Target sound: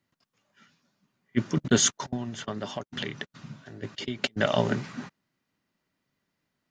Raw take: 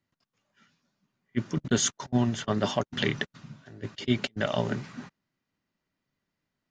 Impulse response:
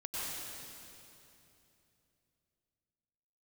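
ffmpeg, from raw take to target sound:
-filter_complex "[0:a]lowshelf=f=65:g=-8.5,asettb=1/sr,asplit=3[s0][s1][s2];[s0]atrim=end=2.134[s3];[s1]atrim=start=2.13:end=4.24,asetpts=PTS-STARTPTS,afade=t=in:d=0.004:c=qsin,afade=t=out:st=2.106:d=0.004:c=qsin,acompressor=threshold=0.0178:ratio=6[s4];[s2]atrim=start=4.236[s5];[s3][s4]acrossfade=d=0.004:c1=hsin:c2=qsin[s6];[s6][s5]acrossfade=d=0.004:c1=qsin:c2=hsin,volume=1.58"

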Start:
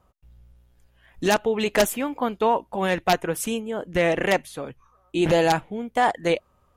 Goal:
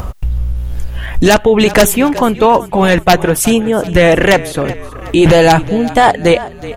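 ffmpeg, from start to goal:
-filter_complex "[0:a]acompressor=mode=upward:threshold=0.0447:ratio=2.5,lowshelf=f=120:g=12,asplit=5[s0][s1][s2][s3][s4];[s1]adelay=372,afreqshift=-31,volume=0.112[s5];[s2]adelay=744,afreqshift=-62,volume=0.0537[s6];[s3]adelay=1116,afreqshift=-93,volume=0.0257[s7];[s4]adelay=1488,afreqshift=-124,volume=0.0124[s8];[s0][s5][s6][s7][s8]amix=inputs=5:normalize=0,apsyclip=6.68,volume=0.794"

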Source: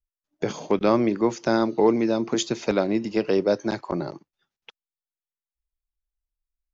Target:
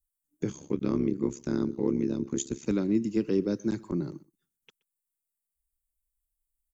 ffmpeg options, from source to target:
-filter_complex "[0:a]firequalizer=gain_entry='entry(300,0);entry(650,-22);entry(1100,-13);entry(2300,-12);entry(5000,-12);entry(8100,11)':delay=0.05:min_phase=1,aecho=1:1:124:0.0708,asettb=1/sr,asplit=3[s0][s1][s2];[s0]atrim=end=0.504[s3];[s1]atrim=start=0.5:end=2.67,asetpts=PTS-STARTPTS,afade=t=in:d=0.004:c=qsin,afade=t=out:st=2.166:d=0.004:c=qsin,tremolo=f=69:d=0.889[s4];[s2]atrim=start=2.666[s5];[s3][s4]acrossfade=d=0.004:c1=hsin:c2=qsin[s6];[s6][s5]acrossfade=d=0.004:c1=qsin:c2=hsin"

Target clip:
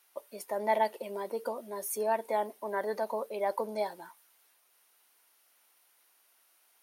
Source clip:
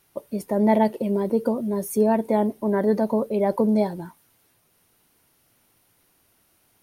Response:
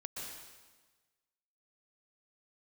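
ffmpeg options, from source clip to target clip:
-af "highpass=750,volume=0.75"

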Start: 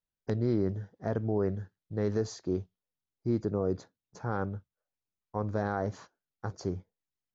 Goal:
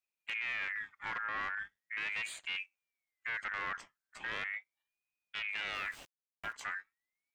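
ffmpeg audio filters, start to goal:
-filter_complex "[0:a]asettb=1/sr,asplit=3[s0][s1][s2];[s0]atrim=end=5.754[s3];[s1]atrim=start=5.75:end=6.53,asetpts=PTS-STARTPTS,afade=t=in:d=0.004:c=qsin,afade=t=out:st=0.776:d=0.004:c=qsin,aeval=exprs='val(0)*gte(abs(val(0)),0.00266)':c=same[s4];[s2]atrim=start=6.526[s5];[s3][s4]acrossfade=d=0.004:c1=hsin:c2=qsin[s6];[s6][s5]acrossfade=d=0.004:c1=qsin:c2=hsin,aeval=exprs='(tanh(63.1*val(0)+0.4)-tanh(0.4))/63.1':c=same,aeval=exprs='val(0)*sin(2*PI*2000*n/s+2000*0.25/0.39*sin(2*PI*0.39*n/s))':c=same,volume=1.5"

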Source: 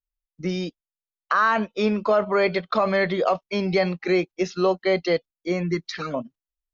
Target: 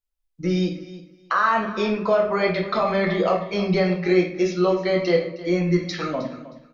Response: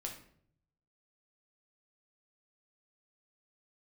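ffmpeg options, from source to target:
-filter_complex "[0:a]asplit=2[s0][s1];[s1]acompressor=threshold=0.0316:ratio=6,volume=0.891[s2];[s0][s2]amix=inputs=2:normalize=0,aecho=1:1:313|626:0.158|0.0301[s3];[1:a]atrim=start_sample=2205[s4];[s3][s4]afir=irnorm=-1:irlink=0"

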